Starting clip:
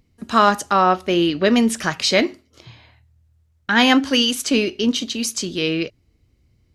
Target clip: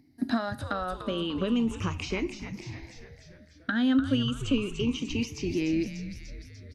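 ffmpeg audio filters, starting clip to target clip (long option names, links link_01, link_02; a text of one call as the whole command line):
ffmpeg -i in.wav -filter_complex "[0:a]afftfilt=real='re*pow(10,13/40*sin(2*PI*(0.76*log(max(b,1)*sr/1024/100)/log(2)-(-0.34)*(pts-256)/sr)))':imag='im*pow(10,13/40*sin(2*PI*(0.76*log(max(b,1)*sr/1024/100)/log(2)-(-0.34)*(pts-256)/sr)))':win_size=1024:overlap=0.75,acompressor=threshold=-24dB:ratio=16,asubboost=boost=2.5:cutoff=160,highpass=82,equalizer=frequency=270:width=2.3:gain=13,asplit=7[link_01][link_02][link_03][link_04][link_05][link_06][link_07];[link_02]adelay=295,afreqshift=-140,volume=-10dB[link_08];[link_03]adelay=590,afreqshift=-280,volume=-15.2dB[link_09];[link_04]adelay=885,afreqshift=-420,volume=-20.4dB[link_10];[link_05]adelay=1180,afreqshift=-560,volume=-25.6dB[link_11];[link_06]adelay=1475,afreqshift=-700,volume=-30.8dB[link_12];[link_07]adelay=1770,afreqshift=-840,volume=-36dB[link_13];[link_01][link_08][link_09][link_10][link_11][link_12][link_13]amix=inputs=7:normalize=0,acrossover=split=3900[link_14][link_15];[link_15]acompressor=threshold=-44dB:ratio=4:attack=1:release=60[link_16];[link_14][link_16]amix=inputs=2:normalize=0,volume=-5dB" out.wav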